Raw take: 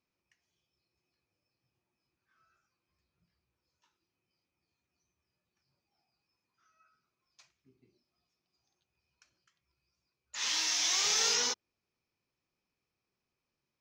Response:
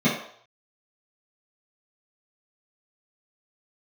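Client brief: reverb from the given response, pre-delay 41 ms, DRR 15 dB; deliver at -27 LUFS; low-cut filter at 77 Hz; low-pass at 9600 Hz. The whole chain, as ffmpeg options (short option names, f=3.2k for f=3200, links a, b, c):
-filter_complex "[0:a]highpass=77,lowpass=9.6k,asplit=2[a][b];[1:a]atrim=start_sample=2205,adelay=41[c];[b][c]afir=irnorm=-1:irlink=0,volume=-31dB[d];[a][d]amix=inputs=2:normalize=0,volume=1.5dB"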